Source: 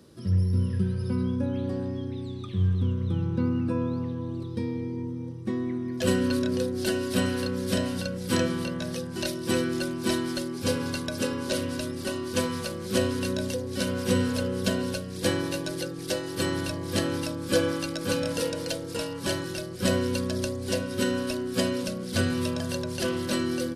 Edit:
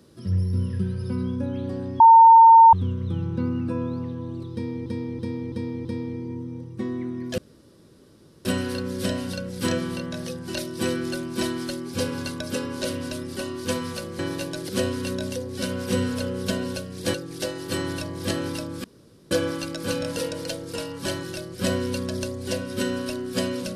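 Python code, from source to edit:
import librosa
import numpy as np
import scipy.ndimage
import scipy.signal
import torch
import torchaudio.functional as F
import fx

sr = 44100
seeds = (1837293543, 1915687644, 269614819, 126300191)

y = fx.edit(x, sr, fx.bleep(start_s=2.0, length_s=0.73, hz=909.0, db=-7.0),
    fx.repeat(start_s=4.53, length_s=0.33, count=5),
    fx.room_tone_fill(start_s=6.06, length_s=1.07),
    fx.move(start_s=15.32, length_s=0.5, to_s=12.87),
    fx.insert_room_tone(at_s=17.52, length_s=0.47), tone=tone)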